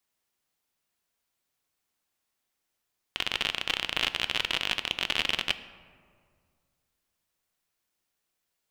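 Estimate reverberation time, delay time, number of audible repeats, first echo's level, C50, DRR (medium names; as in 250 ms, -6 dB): 2.0 s, no echo, no echo, no echo, 14.0 dB, 11.5 dB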